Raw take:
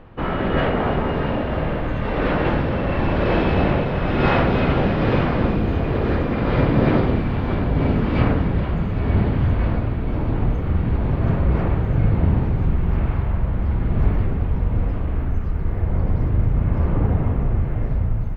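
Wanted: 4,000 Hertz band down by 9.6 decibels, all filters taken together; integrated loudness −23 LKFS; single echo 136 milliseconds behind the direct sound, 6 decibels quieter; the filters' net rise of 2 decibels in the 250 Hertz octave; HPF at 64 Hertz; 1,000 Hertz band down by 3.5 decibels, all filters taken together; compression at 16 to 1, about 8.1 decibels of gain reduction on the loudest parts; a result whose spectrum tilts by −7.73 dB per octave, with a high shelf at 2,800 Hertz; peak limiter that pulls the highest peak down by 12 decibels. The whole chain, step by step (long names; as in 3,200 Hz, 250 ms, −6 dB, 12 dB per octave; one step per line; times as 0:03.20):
high-pass filter 64 Hz
parametric band 250 Hz +3 dB
parametric band 1,000 Hz −3.5 dB
high-shelf EQ 2,800 Hz −7 dB
parametric band 4,000 Hz −8.5 dB
downward compressor 16 to 1, threshold −19 dBFS
brickwall limiter −23.5 dBFS
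single-tap delay 136 ms −6 dB
level +7.5 dB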